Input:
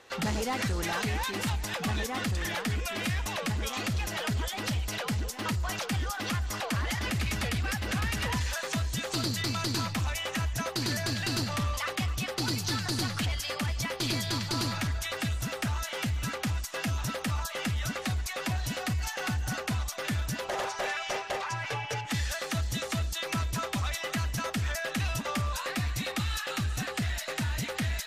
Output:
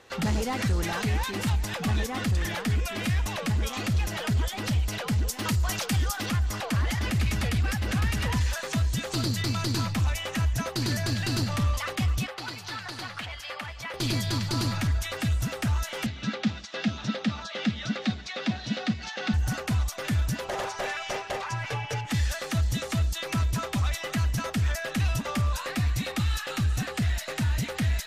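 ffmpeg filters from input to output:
ffmpeg -i in.wav -filter_complex "[0:a]asettb=1/sr,asplit=3[link_01][link_02][link_03];[link_01]atrim=end=5.274[link_04];[link_02]atrim=start=5.27:end=6.26,asetpts=PTS-STARTPTS,afade=type=in:duration=0.004:curve=qsin,afade=type=out:start_time=0.986:duration=0.004:curve=qsin,highshelf=frequency=3700:gain=7.5[link_05];[link_03]atrim=start=6.256[link_06];[link_04][link_05]acrossfade=duration=0.004:curve1=hsin:curve2=qsin[link_07];[link_07][link_06]acrossfade=duration=0.004:curve1=qsin:curve2=hsin,asettb=1/sr,asplit=3[link_08][link_09][link_10];[link_08]atrim=end=12.274[link_11];[link_09]atrim=start=12.27:end=13.94,asetpts=PTS-STARTPTS,afade=type=in:duration=0.004:curve=qsin,afade=type=out:start_time=1.666:duration=0.004:curve=qsin,acrossover=split=550 3600:gain=0.141 1 0.251[link_12][link_13][link_14];[link_12][link_13][link_14]amix=inputs=3:normalize=0[link_15];[link_10]atrim=start=13.936[link_16];[link_11][link_15]acrossfade=duration=0.004:curve1=hsin:curve2=qsin[link_17];[link_17][link_16]acrossfade=duration=0.004:curve1=qsin:curve2=hsin,asettb=1/sr,asplit=3[link_18][link_19][link_20];[link_18]atrim=end=16.064[link_21];[link_19]atrim=start=16.06:end=19.34,asetpts=PTS-STARTPTS,afade=type=in:duration=0.004:curve=qsin,afade=type=out:start_time=3.276:duration=0.004:curve=qsin,highpass=190,equalizer=frequency=210:width_type=q:width=4:gain=10,equalizer=frequency=1000:width_type=q:width=4:gain=-6,equalizer=frequency=3700:width_type=q:width=4:gain=6,lowpass=frequency=5500:width=0.5412,lowpass=frequency=5500:width=1.3066[link_22];[link_20]atrim=start=19.336[link_23];[link_21][link_22]acrossfade=duration=0.004:curve1=hsin:curve2=qsin[link_24];[link_24][link_23]acrossfade=duration=0.004:curve1=qsin:curve2=hsin,lowshelf=frequency=240:gain=7" out.wav

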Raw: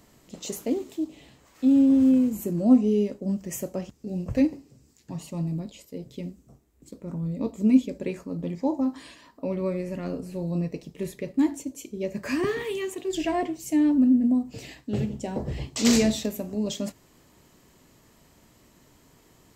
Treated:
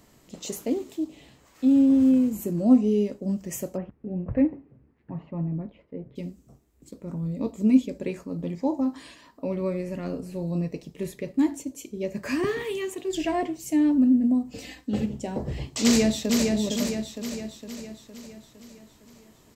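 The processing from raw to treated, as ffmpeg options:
ffmpeg -i in.wav -filter_complex "[0:a]asplit=3[link_01][link_02][link_03];[link_01]afade=type=out:start_time=3.76:duration=0.02[link_04];[link_02]lowpass=frequency=2000:width=0.5412,lowpass=frequency=2000:width=1.3066,afade=type=in:start_time=3.76:duration=0.02,afade=type=out:start_time=6.15:duration=0.02[link_05];[link_03]afade=type=in:start_time=6.15:duration=0.02[link_06];[link_04][link_05][link_06]amix=inputs=3:normalize=0,asettb=1/sr,asplit=3[link_07][link_08][link_09];[link_07]atrim=end=14.514[link_10];[link_08]atrim=start=14.51:end=15.06,asetpts=PTS-STARTPTS,afade=type=in:duration=0.004:curve=qsin,afade=type=out:start_time=0.546:duration=0.004:curve=qsin,aecho=1:1:3.9:0.65,atrim=end_sample=24255[link_11];[link_09]atrim=start=15.056[link_12];[link_10][link_11]acrossfade=duration=0.004:curve1=hsin:curve2=qsin[link_13];[link_13][link_12]acrossfade=duration=0.004:curve1=qsin:curve2=hsin,asplit=2[link_14][link_15];[link_15]afade=type=in:start_time=15.83:duration=0.01,afade=type=out:start_time=16.54:duration=0.01,aecho=0:1:460|920|1380|1840|2300|2760|3220|3680:0.668344|0.367589|0.202174|0.111196|0.0611576|0.0336367|0.0185002|0.0101751[link_16];[link_14][link_16]amix=inputs=2:normalize=0" out.wav

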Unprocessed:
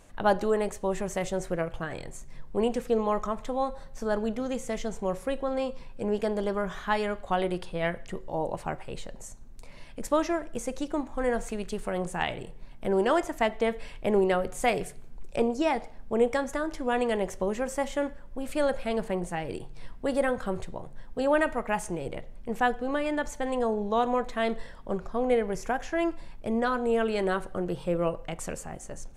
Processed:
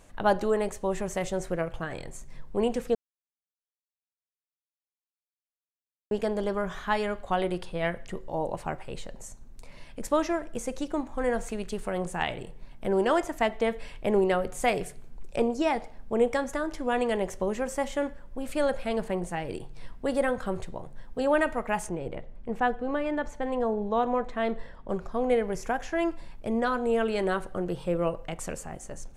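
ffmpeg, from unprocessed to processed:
ffmpeg -i in.wav -filter_complex "[0:a]asettb=1/sr,asplit=3[link_01][link_02][link_03];[link_01]atrim=end=21.894[link_04];[link_02]atrim=start=21.89:end=24.89,asetpts=PTS-STARTPTS,afade=type=in:duration=0.004:curve=qsin,afade=type=out:start_time=2.996:duration=0.004:curve=qsin,lowpass=frequency=2100:poles=1[link_05];[link_03]atrim=start=24.886[link_06];[link_04][link_05]acrossfade=duration=0.004:curve1=hsin:curve2=qsin[link_07];[link_07][link_06]acrossfade=duration=0.004:curve1=qsin:curve2=hsin,asplit=3[link_08][link_09][link_10];[link_08]atrim=end=2.95,asetpts=PTS-STARTPTS,afade=type=out:start_time=2.946:duration=0.004:curve=hsin[link_11];[link_09]atrim=start=2.95:end=6.11,asetpts=PTS-STARTPTS,volume=0[link_12];[link_10]atrim=start=6.11,asetpts=PTS-STARTPTS,afade=type=in:duration=0.004:curve=hsin[link_13];[link_11][link_12][link_13]concat=n=3:v=0:a=1" out.wav

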